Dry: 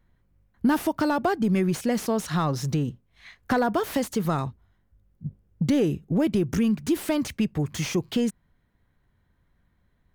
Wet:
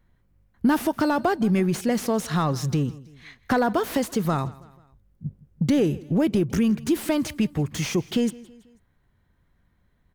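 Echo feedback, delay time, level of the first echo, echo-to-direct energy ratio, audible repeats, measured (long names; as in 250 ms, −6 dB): 48%, 163 ms, −21.0 dB, −20.0 dB, 3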